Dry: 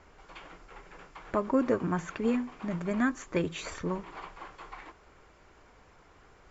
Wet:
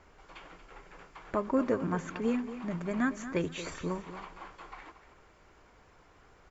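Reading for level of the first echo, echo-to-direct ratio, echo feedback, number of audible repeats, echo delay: -12.5 dB, -12.5 dB, 23%, 2, 0.231 s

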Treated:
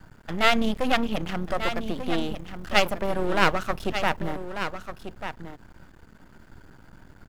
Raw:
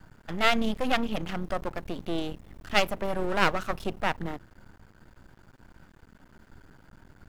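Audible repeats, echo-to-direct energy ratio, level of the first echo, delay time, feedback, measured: 1, -9.5 dB, -9.5 dB, 1.192 s, no steady repeat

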